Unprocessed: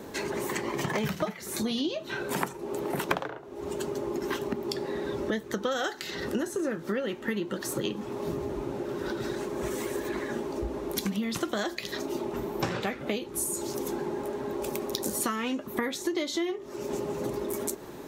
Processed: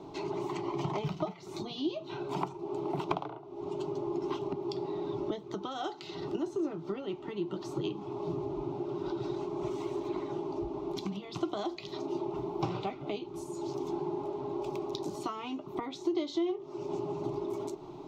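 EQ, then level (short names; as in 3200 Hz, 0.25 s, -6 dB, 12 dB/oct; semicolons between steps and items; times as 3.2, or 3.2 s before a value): air absorption 200 m; fixed phaser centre 340 Hz, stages 8; 0.0 dB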